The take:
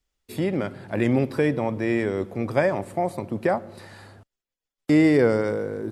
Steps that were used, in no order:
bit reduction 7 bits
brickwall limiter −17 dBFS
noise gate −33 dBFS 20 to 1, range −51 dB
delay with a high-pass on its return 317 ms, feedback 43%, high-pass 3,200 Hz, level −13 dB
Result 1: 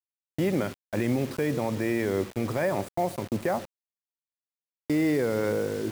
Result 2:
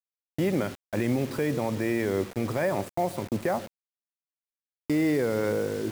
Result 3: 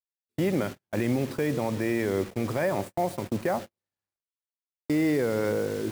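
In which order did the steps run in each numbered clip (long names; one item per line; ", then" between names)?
brickwall limiter, then noise gate, then delay with a high-pass on its return, then bit reduction
noise gate, then brickwall limiter, then delay with a high-pass on its return, then bit reduction
brickwall limiter, then bit reduction, then delay with a high-pass on its return, then noise gate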